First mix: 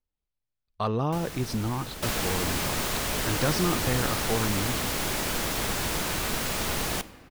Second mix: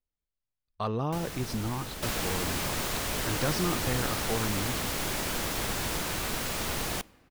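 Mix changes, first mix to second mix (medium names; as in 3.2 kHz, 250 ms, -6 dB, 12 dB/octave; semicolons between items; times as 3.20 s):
speech -3.5 dB; second sound: send -11.0 dB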